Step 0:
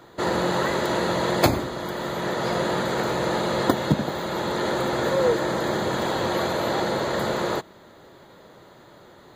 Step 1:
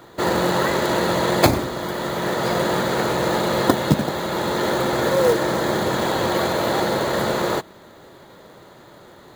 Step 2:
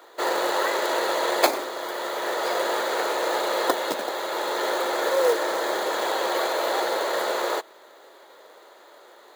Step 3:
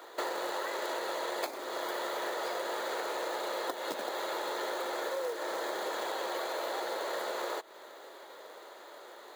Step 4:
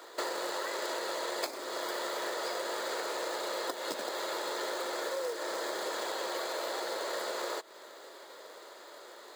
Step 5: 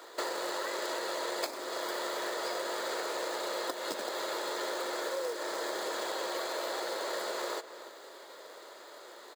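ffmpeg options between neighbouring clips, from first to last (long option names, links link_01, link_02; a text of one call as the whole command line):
ffmpeg -i in.wav -af "acrusher=bits=4:mode=log:mix=0:aa=0.000001,volume=3.5dB" out.wav
ffmpeg -i in.wav -af "highpass=frequency=410:width=0.5412,highpass=frequency=410:width=1.3066,volume=-2.5dB" out.wav
ffmpeg -i in.wav -af "acompressor=threshold=-32dB:ratio=12" out.wav
ffmpeg -i in.wav -af "equalizer=frequency=800:width_type=o:width=0.33:gain=-4,equalizer=frequency=5000:width_type=o:width=0.33:gain=8,equalizer=frequency=8000:width_type=o:width=0.33:gain=7" out.wav
ffmpeg -i in.wav -filter_complex "[0:a]asplit=2[link_01][link_02];[link_02]adelay=291.5,volume=-13dB,highshelf=frequency=4000:gain=-6.56[link_03];[link_01][link_03]amix=inputs=2:normalize=0" out.wav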